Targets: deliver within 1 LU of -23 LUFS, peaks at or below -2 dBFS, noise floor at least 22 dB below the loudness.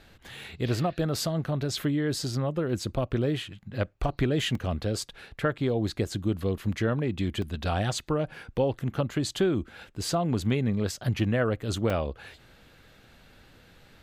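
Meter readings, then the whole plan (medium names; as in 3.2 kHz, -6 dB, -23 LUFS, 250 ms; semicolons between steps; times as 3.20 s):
dropouts 4; longest dropout 2.6 ms; loudness -29.0 LUFS; peak level -13.5 dBFS; loudness target -23.0 LUFS
-> interpolate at 0.44/4.55/7.42/11.90 s, 2.6 ms; trim +6 dB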